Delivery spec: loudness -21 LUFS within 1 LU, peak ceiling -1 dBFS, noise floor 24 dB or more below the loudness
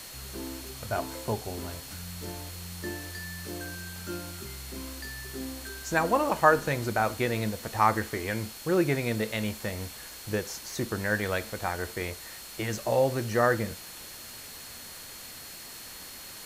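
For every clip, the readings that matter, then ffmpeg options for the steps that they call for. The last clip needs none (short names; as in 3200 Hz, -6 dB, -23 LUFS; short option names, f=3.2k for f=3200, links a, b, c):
steady tone 4300 Hz; tone level -50 dBFS; noise floor -44 dBFS; noise floor target -55 dBFS; loudness -30.5 LUFS; peak -6.0 dBFS; loudness target -21.0 LUFS
-> -af "bandreject=f=4.3k:w=30"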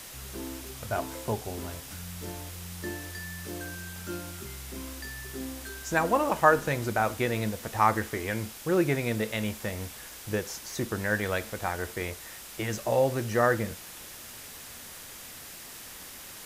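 steady tone none; noise floor -45 dBFS; noise floor target -55 dBFS
-> -af "afftdn=nr=10:nf=-45"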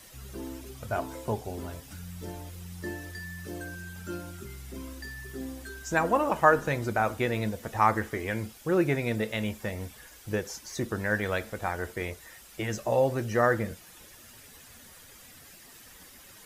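noise floor -52 dBFS; noise floor target -54 dBFS
-> -af "afftdn=nr=6:nf=-52"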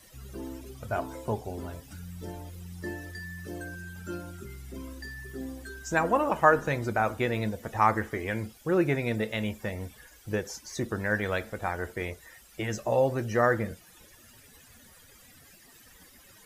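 noise floor -55 dBFS; loudness -30.0 LUFS; peak -6.5 dBFS; loudness target -21.0 LUFS
-> -af "volume=9dB,alimiter=limit=-1dB:level=0:latency=1"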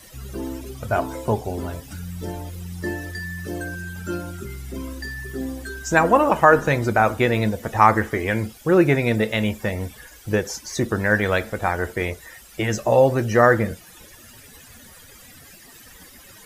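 loudness -21.5 LUFS; peak -1.0 dBFS; noise floor -46 dBFS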